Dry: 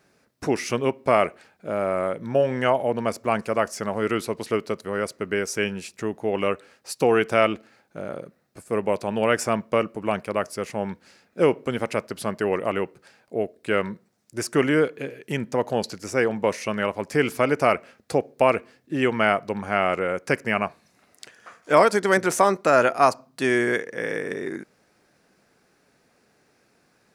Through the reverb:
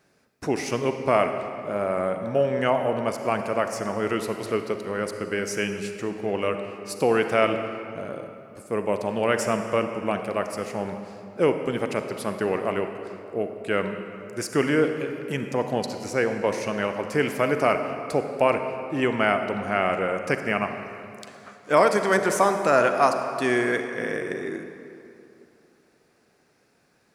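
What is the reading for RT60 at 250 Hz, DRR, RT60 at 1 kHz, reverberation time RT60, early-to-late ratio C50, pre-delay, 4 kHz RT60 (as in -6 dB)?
2.8 s, 6.5 dB, 2.8 s, 2.8 s, 7.0 dB, 37 ms, 1.8 s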